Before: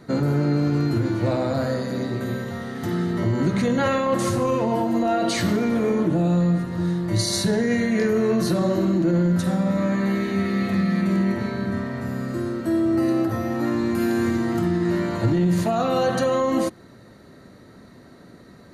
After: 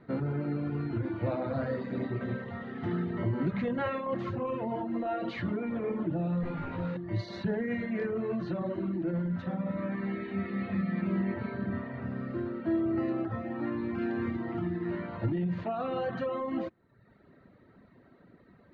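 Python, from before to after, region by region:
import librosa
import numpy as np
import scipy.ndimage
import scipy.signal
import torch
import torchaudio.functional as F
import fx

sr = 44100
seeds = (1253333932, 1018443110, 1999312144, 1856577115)

y = fx.chain(x, sr, fx.lower_of_two(delay_ms=0.79),
    fx.room_flutter(wall_m=3.3, rt60_s=0.42),
    fx.env_flatten(amount_pct=50), at=(6.43, 6.97))
y = fx.dereverb_blind(y, sr, rt60_s=0.82)
y = scipy.signal.sosfilt(scipy.signal.butter(4, 3000.0, 'lowpass', fs=sr, output='sos'), y)
y = fx.rider(y, sr, range_db=10, speed_s=2.0)
y = y * 10.0 ** (-8.5 / 20.0)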